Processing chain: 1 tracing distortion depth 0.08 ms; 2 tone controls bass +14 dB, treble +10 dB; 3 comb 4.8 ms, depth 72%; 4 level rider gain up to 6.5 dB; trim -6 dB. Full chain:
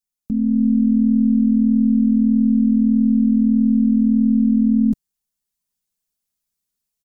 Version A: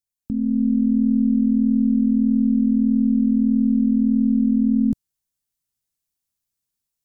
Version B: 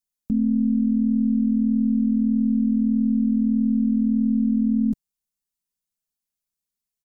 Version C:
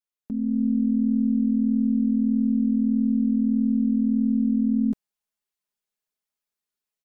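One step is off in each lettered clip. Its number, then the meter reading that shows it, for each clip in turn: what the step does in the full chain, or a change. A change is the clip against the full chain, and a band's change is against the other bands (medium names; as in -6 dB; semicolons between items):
3, loudness change -2.5 LU; 4, momentary loudness spread change -1 LU; 2, loudness change -6.5 LU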